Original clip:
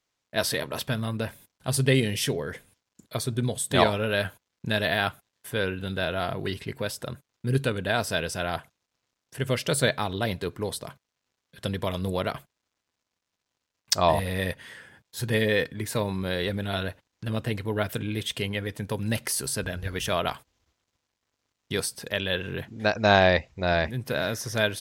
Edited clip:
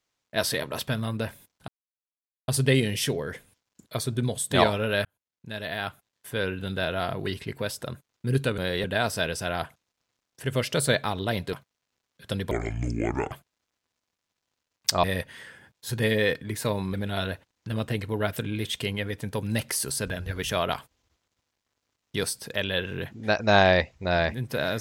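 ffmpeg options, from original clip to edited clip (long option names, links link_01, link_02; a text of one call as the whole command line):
ffmpeg -i in.wav -filter_complex "[0:a]asplit=10[link_01][link_02][link_03][link_04][link_05][link_06][link_07][link_08][link_09][link_10];[link_01]atrim=end=1.68,asetpts=PTS-STARTPTS,afade=type=out:start_time=1.676:duration=0.004:curve=hsin,apad=pad_dur=0.8[link_11];[link_02]atrim=start=1.68:end=4.25,asetpts=PTS-STARTPTS,afade=type=in:duration=0.004:curve=hsin,afade=type=out:start_time=2.566:duration=0.004:curve=hsin[link_12];[link_03]atrim=start=4.25:end=7.782,asetpts=PTS-STARTPTS,afade=type=in:duration=1.53[link_13];[link_04]atrim=start=16.238:end=16.502[link_14];[link_05]atrim=start=7.778:end=10.472[link_15];[link_06]atrim=start=10.868:end=11.854[link_16];[link_07]atrim=start=11.85:end=12.35,asetpts=PTS-STARTPTS,asetrate=27342,aresample=44100[link_17];[link_08]atrim=start=12.346:end=14.072[link_18];[link_09]atrim=start=14.338:end=16.242[link_19];[link_10]atrim=start=16.498[link_20];[link_11][link_12][link_13]concat=n=3:v=0:a=1[link_21];[link_21][link_14]acrossfade=duration=0.004:curve1=hsin:curve2=hsin[link_22];[link_22][link_15]acrossfade=duration=0.004:curve1=hsin:curve2=hsin[link_23];[link_23][link_16]acrossfade=duration=0.004:curve1=hsin:curve2=hsin[link_24];[link_24][link_17]acrossfade=duration=0.004:curve1=hsin:curve2=hsin[link_25];[link_25][link_18]acrossfade=duration=0.004:curve1=hsin:curve2=hsin[link_26];[link_26][link_19]acrossfade=duration=0.004:curve1=hsin:curve2=hsin[link_27];[link_27][link_20]acrossfade=duration=0.004:curve1=hsin:curve2=hsin" out.wav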